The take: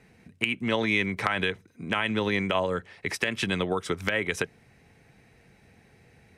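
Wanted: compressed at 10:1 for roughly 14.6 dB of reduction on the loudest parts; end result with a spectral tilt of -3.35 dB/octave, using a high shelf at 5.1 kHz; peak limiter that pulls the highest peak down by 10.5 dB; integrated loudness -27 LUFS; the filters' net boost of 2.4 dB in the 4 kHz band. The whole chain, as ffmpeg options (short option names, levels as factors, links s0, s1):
-af "equalizer=f=4000:t=o:g=6.5,highshelf=f=5100:g=-8,acompressor=threshold=0.0141:ratio=10,volume=6.31,alimiter=limit=0.188:level=0:latency=1"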